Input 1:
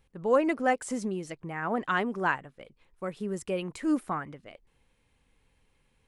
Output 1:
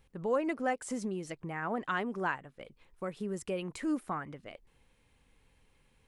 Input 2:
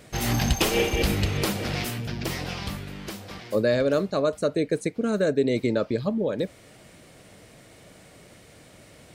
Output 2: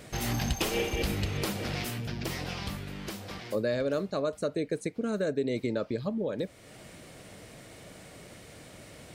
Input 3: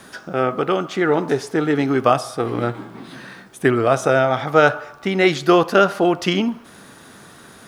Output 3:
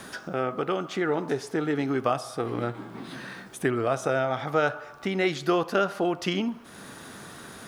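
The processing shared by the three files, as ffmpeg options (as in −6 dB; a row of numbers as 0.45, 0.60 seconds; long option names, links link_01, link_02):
-af "acompressor=threshold=-43dB:ratio=1.5,volume=1.5dB"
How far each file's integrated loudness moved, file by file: −5.5, −6.5, −9.0 LU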